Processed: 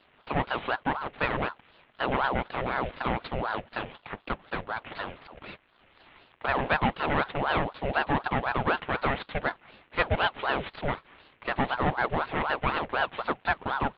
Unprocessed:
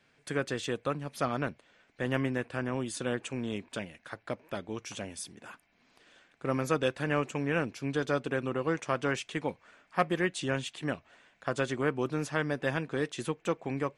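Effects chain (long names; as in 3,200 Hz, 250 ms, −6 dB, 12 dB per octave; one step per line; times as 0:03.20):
variable-slope delta modulation 16 kbit/s
ring modulator whose carrier an LFO sweeps 750 Hz, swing 65%, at 4 Hz
level +7.5 dB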